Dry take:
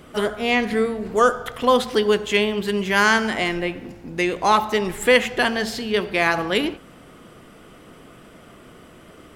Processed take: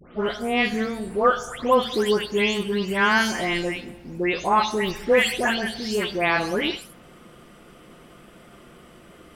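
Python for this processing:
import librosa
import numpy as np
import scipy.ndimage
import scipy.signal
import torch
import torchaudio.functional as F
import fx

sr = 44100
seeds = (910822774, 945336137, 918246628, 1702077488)

y = fx.spec_delay(x, sr, highs='late', ms=264)
y = y * 10.0 ** (-1.5 / 20.0)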